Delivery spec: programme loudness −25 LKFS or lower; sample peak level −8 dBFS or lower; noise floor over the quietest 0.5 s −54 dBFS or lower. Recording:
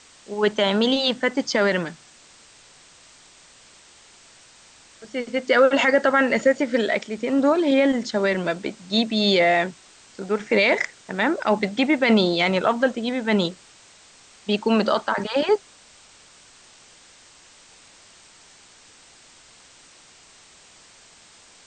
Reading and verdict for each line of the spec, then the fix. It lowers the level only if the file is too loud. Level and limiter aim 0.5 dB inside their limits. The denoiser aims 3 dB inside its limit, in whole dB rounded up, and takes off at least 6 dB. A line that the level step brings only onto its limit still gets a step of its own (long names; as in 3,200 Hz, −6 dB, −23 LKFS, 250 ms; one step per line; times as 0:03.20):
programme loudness −21.0 LKFS: out of spec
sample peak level −6.0 dBFS: out of spec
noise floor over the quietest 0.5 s −51 dBFS: out of spec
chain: level −4.5 dB